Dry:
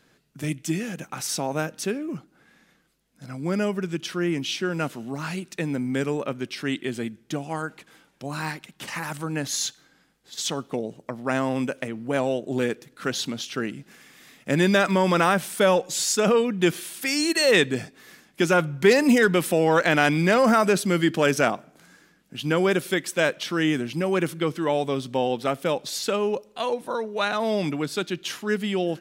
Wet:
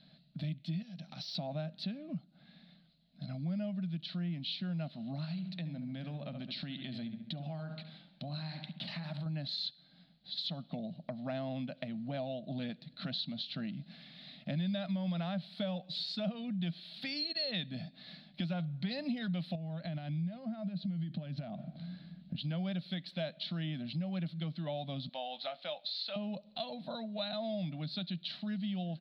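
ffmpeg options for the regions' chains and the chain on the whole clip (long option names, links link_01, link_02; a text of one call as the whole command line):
ffmpeg -i in.wav -filter_complex "[0:a]asettb=1/sr,asplit=3[link_01][link_02][link_03];[link_01]atrim=end=0.824[link_04];[link_02]atrim=start=0.82:end=1.35,asetpts=PTS-STARTPTS,afade=type=in:duration=0.004:curve=qsin,afade=type=out:start_time=0.526:duration=0.004:curve=qsin,acompressor=threshold=-39dB:ratio=10:attack=3.2:release=140:knee=1:detection=peak,lowpass=frequency=5600:width_type=q:width=15,aeval=exprs='0.0447*(abs(mod(val(0)/0.0447+3,4)-2)-1)':channel_layout=same[link_05];[link_03]atrim=start=1.346[link_06];[link_04][link_05]acrossfade=duration=0.004:curve1=hsin:curve2=qsin[link_07];[link_07][link_06]acrossfade=duration=0.004:curve1=qsin:curve2=hsin,asettb=1/sr,asplit=3[link_08][link_09][link_10];[link_08]atrim=end=5.244[link_11];[link_09]atrim=start=5.24:end=9.26,asetpts=PTS-STARTPTS,afade=type=in:duration=0.004:curve=qsin,afade=type=out:start_time=4.016:duration=0.004:curve=qsin,asplit=2[link_12][link_13];[link_13]adelay=69,lowpass=frequency=3300:poles=1,volume=-11dB,asplit=2[link_14][link_15];[link_15]adelay=69,lowpass=frequency=3300:poles=1,volume=0.47,asplit=2[link_16][link_17];[link_17]adelay=69,lowpass=frequency=3300:poles=1,volume=0.47,asplit=2[link_18][link_19];[link_19]adelay=69,lowpass=frequency=3300:poles=1,volume=0.47,asplit=2[link_20][link_21];[link_21]adelay=69,lowpass=frequency=3300:poles=1,volume=0.47[link_22];[link_12][link_14][link_16][link_18][link_20][link_22]amix=inputs=6:normalize=0,atrim=end_sample=177282,acompressor=threshold=-32dB:ratio=3:attack=3.2:release=140:knee=1:detection=peak[link_23];[link_10]atrim=start=9.256[link_24];[link_11][link_23]acrossfade=duration=0.004:curve1=hsin:curve2=qsin[link_25];[link_25][link_24]acrossfade=duration=0.004:curve1=qsin:curve2=hsin,asettb=1/sr,asplit=3[link_26][link_27][link_28];[link_26]atrim=end=19.554[link_29];[link_27]atrim=start=19.55:end=22.36,asetpts=PTS-STARTPTS,afade=type=in:duration=0.004:curve=qsin,afade=type=out:start_time=2.806:duration=0.004:curve=qsin,lowpass=4700,acompressor=threshold=-32dB:ratio=8:attack=3.2:release=140:knee=1:detection=peak,equalizer=frequency=94:width_type=o:width=2.8:gain=13[link_30];[link_28]atrim=start=22.356[link_31];[link_29][link_30]acrossfade=duration=0.004:curve1=hsin:curve2=qsin[link_32];[link_32][link_31]acrossfade=duration=0.004:curve1=qsin:curve2=hsin,asettb=1/sr,asplit=3[link_33][link_34][link_35];[link_33]atrim=end=25.094[link_36];[link_34]atrim=start=25.09:end=26.16,asetpts=PTS-STARTPTS,afade=type=in:duration=0.004:curve=qsin,afade=type=out:start_time=1.066:duration=0.004:curve=qsin,highpass=740,lowpass=5700,asplit=2[link_37][link_38];[link_38]adelay=20,volume=-11dB[link_39];[link_37][link_39]amix=inputs=2:normalize=0,atrim=end_sample=47187[link_40];[link_35]atrim=start=26.156[link_41];[link_36][link_40]acrossfade=duration=0.004:curve1=hsin:curve2=qsin[link_42];[link_42][link_41]acrossfade=duration=0.004:curve1=qsin:curve2=hsin,firequalizer=gain_entry='entry(100,0);entry(170,15);entry(410,-19);entry(630,9);entry(950,-9);entry(2800,1);entry(4100,15);entry(6300,-29)':delay=0.05:min_phase=1,acompressor=threshold=-34dB:ratio=3,volume=-5.5dB" out.wav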